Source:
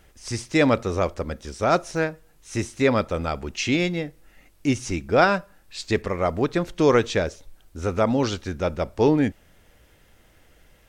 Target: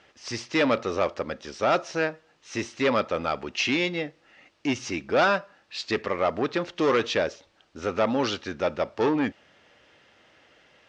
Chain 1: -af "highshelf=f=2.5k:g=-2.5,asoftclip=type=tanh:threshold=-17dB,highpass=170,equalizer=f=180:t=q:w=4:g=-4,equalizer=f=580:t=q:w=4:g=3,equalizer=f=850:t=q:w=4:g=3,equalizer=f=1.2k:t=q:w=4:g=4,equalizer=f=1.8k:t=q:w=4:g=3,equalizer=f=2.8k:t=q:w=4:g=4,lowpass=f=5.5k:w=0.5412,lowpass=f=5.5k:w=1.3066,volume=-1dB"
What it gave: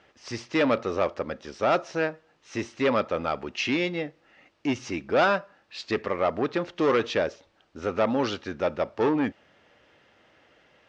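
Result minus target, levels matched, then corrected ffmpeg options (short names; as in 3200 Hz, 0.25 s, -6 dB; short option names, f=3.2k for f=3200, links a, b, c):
4000 Hz band -3.0 dB
-af "highshelf=f=2.5k:g=4,asoftclip=type=tanh:threshold=-17dB,highpass=170,equalizer=f=180:t=q:w=4:g=-4,equalizer=f=580:t=q:w=4:g=3,equalizer=f=850:t=q:w=4:g=3,equalizer=f=1.2k:t=q:w=4:g=4,equalizer=f=1.8k:t=q:w=4:g=3,equalizer=f=2.8k:t=q:w=4:g=4,lowpass=f=5.5k:w=0.5412,lowpass=f=5.5k:w=1.3066,volume=-1dB"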